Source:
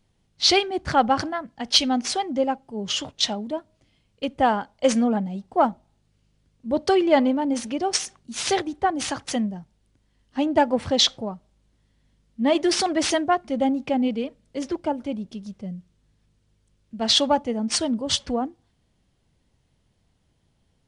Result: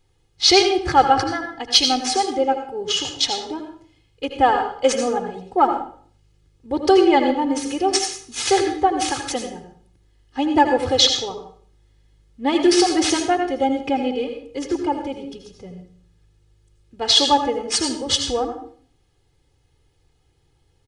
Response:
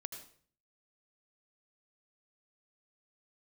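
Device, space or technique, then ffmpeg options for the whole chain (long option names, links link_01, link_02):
microphone above a desk: -filter_complex "[0:a]aecho=1:1:2.4:0.88[link_01];[1:a]atrim=start_sample=2205[link_02];[link_01][link_02]afir=irnorm=-1:irlink=0,volume=4.5dB"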